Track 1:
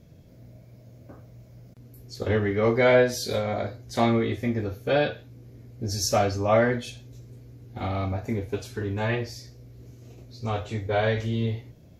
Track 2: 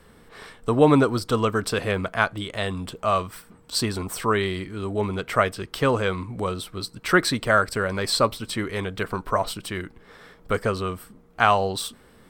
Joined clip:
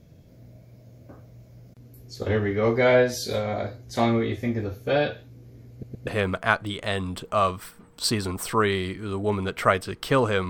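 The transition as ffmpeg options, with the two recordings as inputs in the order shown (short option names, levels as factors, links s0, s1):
-filter_complex "[0:a]apad=whole_dur=10.49,atrim=end=10.49,asplit=3[s0][s1][s2];[s0]atrim=end=5.832[s3];[s1]atrim=start=5.708:end=5.832[s4];[s2]atrim=start=5.708:end=5.832[s5];[1:a]atrim=start=1.778:end=6.2[s6];[s3][s4]acrossfade=d=0.004:c1=hsin:c2=hsin[s7];[s7][s5]acrossfade=d=0.004:c1=hsin:c2=hsin[s8];[s8][s6]acrossfade=d=0.004:c1=hsin:c2=hsin"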